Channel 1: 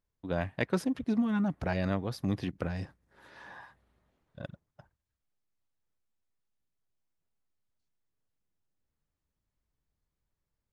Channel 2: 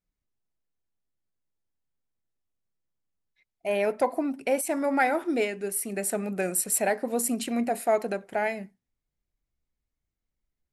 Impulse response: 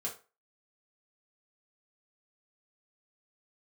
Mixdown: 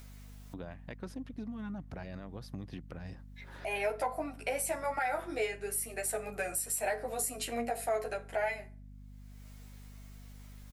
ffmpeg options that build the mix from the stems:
-filter_complex "[0:a]alimiter=limit=-22.5dB:level=0:latency=1:release=166,adelay=300,volume=-16dB[link_01];[1:a]highpass=560,asplit=2[link_02][link_03];[link_03]adelay=11.8,afreqshift=-1.1[link_04];[link_02][link_04]amix=inputs=2:normalize=1,volume=-2dB,asplit=2[link_05][link_06];[link_06]volume=-7dB[link_07];[2:a]atrim=start_sample=2205[link_08];[link_07][link_08]afir=irnorm=-1:irlink=0[link_09];[link_01][link_05][link_09]amix=inputs=3:normalize=0,acompressor=mode=upward:threshold=-34dB:ratio=2.5,aeval=exprs='val(0)+0.00355*(sin(2*PI*50*n/s)+sin(2*PI*2*50*n/s)/2+sin(2*PI*3*50*n/s)/3+sin(2*PI*4*50*n/s)/4+sin(2*PI*5*50*n/s)/5)':channel_layout=same,alimiter=limit=-23dB:level=0:latency=1:release=118"

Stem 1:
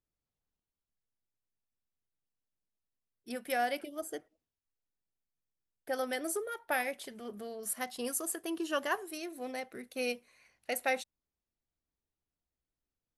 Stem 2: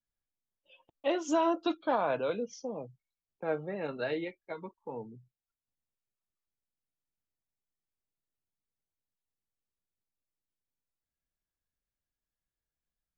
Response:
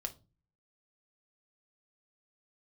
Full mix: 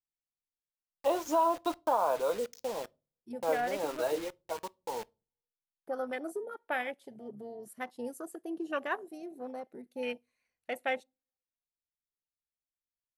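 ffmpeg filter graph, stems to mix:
-filter_complex "[0:a]afwtdn=0.01,volume=-1.5dB,asplit=2[link_01][link_02];[link_02]volume=-19.5dB[link_03];[1:a]agate=range=-33dB:threshold=-50dB:ratio=3:detection=peak,equalizer=frequency=125:width_type=o:width=1:gain=-11,equalizer=frequency=250:width_type=o:width=1:gain=-5,equalizer=frequency=500:width_type=o:width=1:gain=3,equalizer=frequency=1000:width_type=o:width=1:gain=11,equalizer=frequency=2000:width_type=o:width=1:gain=-11,acrusher=bits=6:mix=0:aa=0.000001,volume=-2.5dB,asplit=2[link_04][link_05];[link_05]volume=-12.5dB[link_06];[2:a]atrim=start_sample=2205[link_07];[link_03][link_06]amix=inputs=2:normalize=0[link_08];[link_08][link_07]afir=irnorm=-1:irlink=0[link_09];[link_01][link_04][link_09]amix=inputs=3:normalize=0,alimiter=limit=-18dB:level=0:latency=1:release=296"

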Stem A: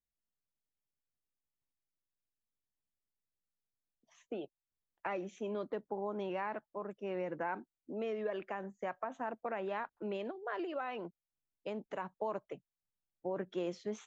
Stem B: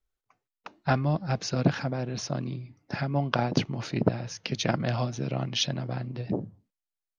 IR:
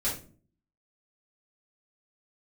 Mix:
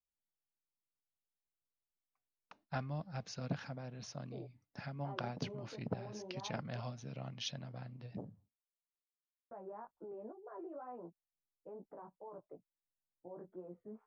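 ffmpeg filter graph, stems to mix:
-filter_complex "[0:a]lowpass=frequency=1100:width=0.5412,lowpass=frequency=1100:width=1.3066,alimiter=level_in=10.5dB:limit=-24dB:level=0:latency=1:release=19,volume=-10.5dB,flanger=delay=16:depth=2.7:speed=2.2,volume=-4dB,asplit=3[link_01][link_02][link_03];[link_01]atrim=end=6.8,asetpts=PTS-STARTPTS,afade=type=out:start_time=6.796:duration=0.004:curve=hsin[link_04];[link_02]atrim=start=6.8:end=9.51,asetpts=PTS-STARTPTS,volume=0[link_05];[link_03]atrim=start=9.51,asetpts=PTS-STARTPTS,afade=type=in:duration=0.004:curve=hsin[link_06];[link_04][link_05][link_06]concat=n=3:v=0:a=1[link_07];[1:a]agate=range=-11dB:threshold=-54dB:ratio=16:detection=peak,equalizer=frequency=350:width=3.5:gain=-8.5,adelay=1850,volume=-14.5dB[link_08];[link_07][link_08]amix=inputs=2:normalize=0"

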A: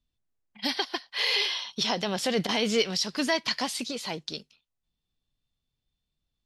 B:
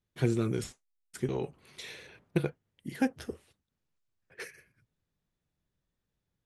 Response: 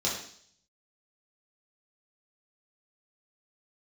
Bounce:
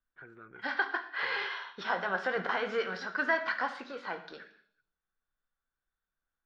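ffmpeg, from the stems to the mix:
-filter_complex "[0:a]volume=-4.5dB,asplit=2[link_01][link_02];[link_02]volume=-12.5dB[link_03];[1:a]alimiter=limit=-19.5dB:level=0:latency=1:release=141,volume=-15.5dB[link_04];[2:a]atrim=start_sample=2205[link_05];[link_03][link_05]afir=irnorm=-1:irlink=0[link_06];[link_01][link_04][link_06]amix=inputs=3:normalize=0,lowpass=frequency=1500:width_type=q:width=7.2,equalizer=frequency=120:width=0.36:gain=-14.5"

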